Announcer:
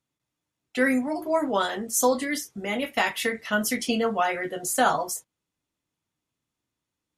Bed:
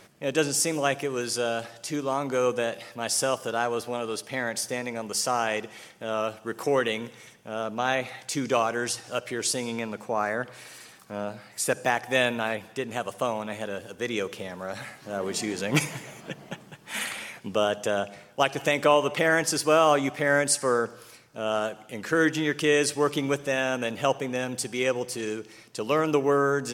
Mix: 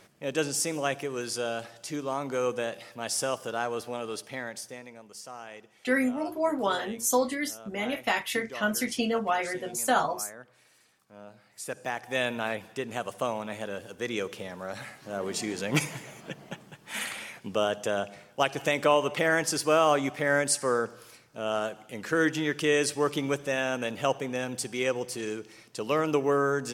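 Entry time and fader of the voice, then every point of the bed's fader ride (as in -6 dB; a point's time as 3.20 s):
5.10 s, -3.0 dB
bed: 4.22 s -4 dB
5.10 s -17 dB
11.06 s -17 dB
12.47 s -2.5 dB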